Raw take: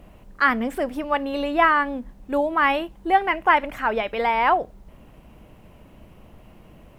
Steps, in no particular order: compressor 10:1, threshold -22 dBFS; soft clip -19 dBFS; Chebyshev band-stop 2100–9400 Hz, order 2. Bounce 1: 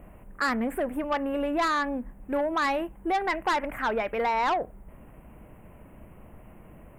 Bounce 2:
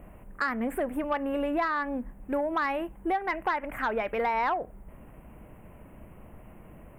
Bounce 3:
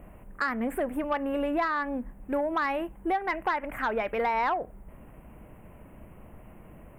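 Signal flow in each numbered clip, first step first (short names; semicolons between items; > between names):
Chebyshev band-stop > soft clip > compressor; compressor > Chebyshev band-stop > soft clip; Chebyshev band-stop > compressor > soft clip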